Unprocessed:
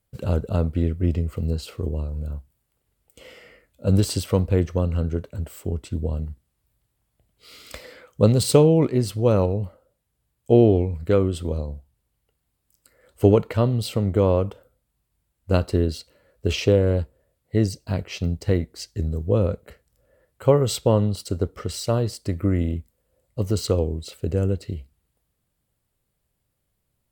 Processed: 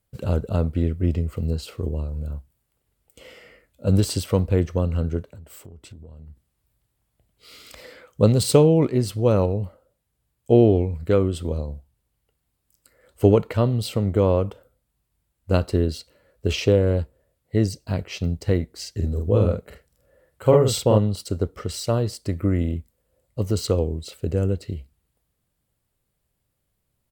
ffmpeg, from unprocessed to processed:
ffmpeg -i in.wav -filter_complex "[0:a]asplit=3[link_01][link_02][link_03];[link_01]afade=type=out:start_time=5.23:duration=0.02[link_04];[link_02]acompressor=threshold=-39dB:ratio=8:attack=3.2:release=140:knee=1:detection=peak,afade=type=in:start_time=5.23:duration=0.02,afade=type=out:start_time=7.77:duration=0.02[link_05];[link_03]afade=type=in:start_time=7.77:duration=0.02[link_06];[link_04][link_05][link_06]amix=inputs=3:normalize=0,asplit=3[link_07][link_08][link_09];[link_07]afade=type=out:start_time=18.82:duration=0.02[link_10];[link_08]asplit=2[link_11][link_12];[link_12]adelay=47,volume=-3dB[link_13];[link_11][link_13]amix=inputs=2:normalize=0,afade=type=in:start_time=18.82:duration=0.02,afade=type=out:start_time=20.97:duration=0.02[link_14];[link_09]afade=type=in:start_time=20.97:duration=0.02[link_15];[link_10][link_14][link_15]amix=inputs=3:normalize=0" out.wav

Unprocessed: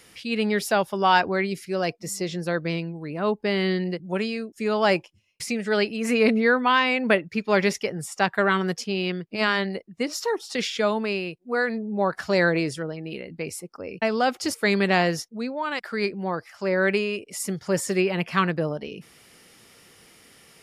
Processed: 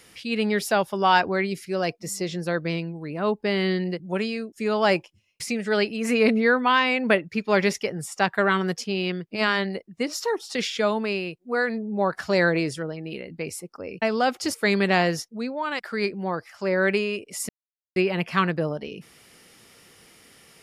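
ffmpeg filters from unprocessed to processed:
ffmpeg -i in.wav -filter_complex "[0:a]asplit=3[link_01][link_02][link_03];[link_01]atrim=end=17.49,asetpts=PTS-STARTPTS,afade=type=out:start_time=17.486:duration=0.004:curve=hsin[link_04];[link_02]atrim=start=17.49:end=17.96,asetpts=PTS-STARTPTS,volume=0[link_05];[link_03]atrim=start=17.96,asetpts=PTS-STARTPTS,afade=type=in:duration=0.004:curve=hsin[link_06];[link_04][link_05][link_06]concat=n=3:v=0:a=1" out.wav

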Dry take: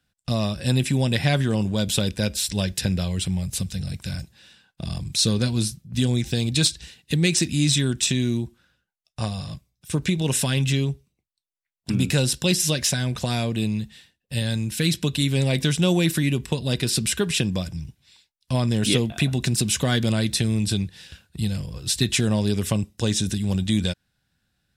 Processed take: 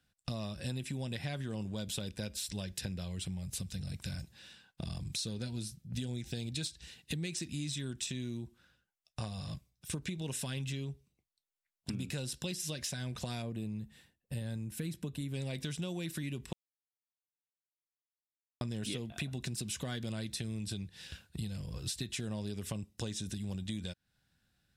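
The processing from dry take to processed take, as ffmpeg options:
ffmpeg -i in.wav -filter_complex "[0:a]asettb=1/sr,asplit=3[link_01][link_02][link_03];[link_01]atrim=end=5.284[link_04];[link_02]atrim=start=5.28:end=6.7,asetpts=PTS-STARTPTS,afade=type=in:duration=0.004:curve=qsin,afade=type=out:start_time=1.416:duration=0.004:curve=qsin,asuperstop=centerf=1100:order=4:qfactor=6.3[link_05];[link_03]atrim=start=6.696[link_06];[link_04][link_05]acrossfade=duration=0.004:curve1=hsin:curve2=qsin[link_07];[link_07][link_06]acrossfade=duration=0.004:curve1=qsin:curve2=hsin,asettb=1/sr,asplit=3[link_08][link_09][link_10];[link_08]atrim=end=13.424[link_11];[link_09]atrim=start=13.42:end=15.34,asetpts=PTS-STARTPTS,afade=type=in:duration=0.004:curve=qsin,afade=type=out:start_time=1.916:duration=0.004:curve=qsin,equalizer=frequency=4100:width=0.54:gain=-11[link_12];[link_10]atrim=start=15.336[link_13];[link_11][link_12]acrossfade=duration=0.004:curve1=hsin:curve2=qsin[link_14];[link_14][link_13]acrossfade=duration=0.004:curve1=qsin:curve2=hsin,asplit=3[link_15][link_16][link_17];[link_15]atrim=end=16.53,asetpts=PTS-STARTPTS,afade=type=out:start_time=16.526:duration=0.004:curve=hsin[link_18];[link_16]atrim=start=16.53:end=18.61,asetpts=PTS-STARTPTS,volume=0[link_19];[link_17]atrim=start=18.61,asetpts=PTS-STARTPTS,afade=type=in:duration=0.004:curve=hsin[link_20];[link_18][link_19][link_20]concat=n=3:v=0:a=1,acompressor=threshold=-33dB:ratio=6,volume=-3.5dB" out.wav

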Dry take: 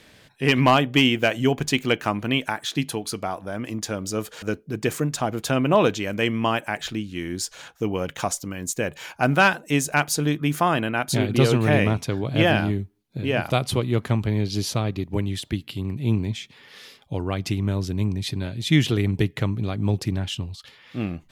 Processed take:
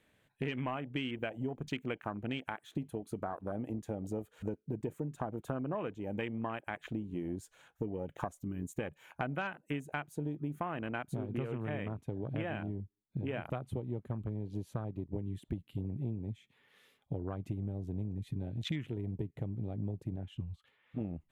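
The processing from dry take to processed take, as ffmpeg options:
ffmpeg -i in.wav -filter_complex "[0:a]asettb=1/sr,asplit=3[link_01][link_02][link_03];[link_01]atrim=end=20.164[link_04];[link_02]atrim=start=20.16:end=21.01,asetpts=PTS-STARTPTS,afade=type=in:duration=0.004:curve=qsin,afade=type=out:start_time=0.846:duration=0.004:curve=qsin,bass=frequency=250:gain=-5,treble=frequency=4000:gain=-9[link_05];[link_03]atrim=start=21.006[link_06];[link_04][link_05]acrossfade=duration=0.004:curve1=hsin:curve2=qsin[link_07];[link_07][link_06]acrossfade=duration=0.004:curve1=qsin:curve2=hsin,afwtdn=0.0398,equalizer=frequency=5000:width_type=o:width=0.65:gain=-14,acompressor=threshold=-32dB:ratio=12,volume=-1.5dB" out.wav

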